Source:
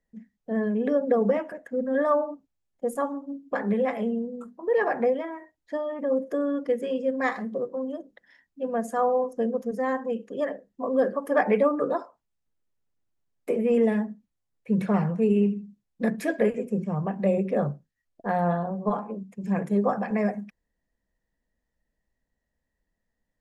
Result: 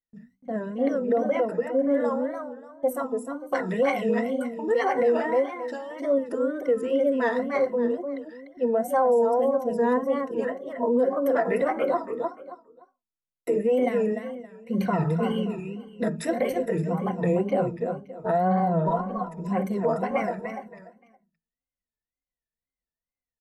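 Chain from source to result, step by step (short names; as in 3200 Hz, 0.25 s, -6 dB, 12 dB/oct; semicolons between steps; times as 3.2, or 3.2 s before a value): ripple EQ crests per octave 2, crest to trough 17 dB; gate with hold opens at -48 dBFS; 3.39–6.06 bell 6400 Hz +11 dB 2.6 oct; feedback echo 0.287 s, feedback 25%, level -7 dB; limiter -14.5 dBFS, peak gain reduction 9 dB; notches 60/120/180/240 Hz; wow and flutter 150 cents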